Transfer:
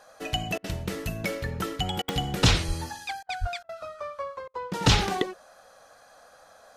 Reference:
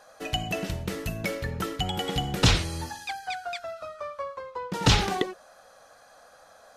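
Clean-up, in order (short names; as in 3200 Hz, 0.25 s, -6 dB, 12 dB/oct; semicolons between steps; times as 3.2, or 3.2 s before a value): de-click; 2.67–2.79 HPF 140 Hz 24 dB/oct; 3.4–3.52 HPF 140 Hz 24 dB/oct; interpolate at 0.58/2.02/3.23/3.63/4.48, 59 ms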